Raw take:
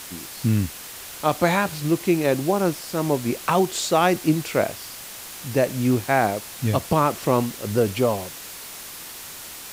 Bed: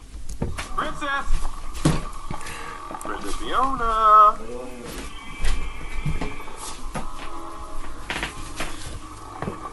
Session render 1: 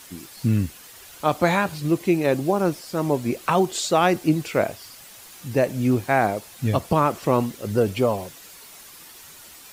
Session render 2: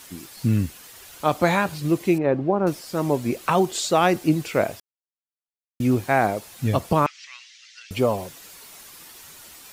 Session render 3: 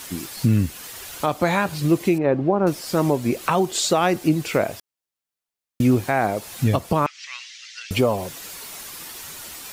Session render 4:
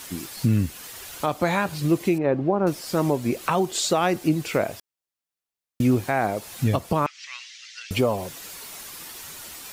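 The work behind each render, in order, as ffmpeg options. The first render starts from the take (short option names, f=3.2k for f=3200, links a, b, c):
-af "afftdn=nr=9:nf=-38"
-filter_complex "[0:a]asettb=1/sr,asplit=3[a][b][c];[a]atrim=end=2.184[d];[b]atrim=start=2.18:end=2.67,asetpts=PTS-STARTPTS,afade=t=in:d=0.004:c=qsin,afade=t=out:st=0.486:d=0.004:c=qsin,lowpass=1.6k[e];[c]atrim=start=2.666[f];[d][e]acrossfade=d=0.004:c1=hsin:c2=qsin[g];[g][f]acrossfade=d=0.004:c1=qsin:c2=hsin,asettb=1/sr,asplit=3[h][i][j];[h]atrim=end=7.064[k];[i]atrim=start=7.06:end=7.91,asetpts=PTS-STARTPTS,afade=t=in:d=0.004:c=qsin,afade=t=out:st=0.846:d=0.004:c=qsin,asuperpass=centerf=3500:order=8:qfactor=0.79[l];[j]atrim=start=7.906[m];[k][l]acrossfade=d=0.004:c1=hsin:c2=qsin[n];[n][m]acrossfade=d=0.004:c1=qsin:c2=hsin,asplit=3[o][p][q];[o]atrim=end=4.8,asetpts=PTS-STARTPTS,afade=t=out:st=4.796:d=0.004:c=hsin[r];[p]atrim=start=4.8:end=5.8,asetpts=PTS-STARTPTS,volume=0[s];[q]atrim=start=5.8,asetpts=PTS-STARTPTS,afade=t=in:d=0.004:c=hsin[t];[r][s][t]concat=n=3:v=0:a=1"
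-filter_complex "[0:a]asplit=2[a][b];[b]acompressor=threshold=-27dB:ratio=6,volume=3dB[c];[a][c]amix=inputs=2:normalize=0,alimiter=limit=-8dB:level=0:latency=1:release=435"
-af "volume=-2.5dB"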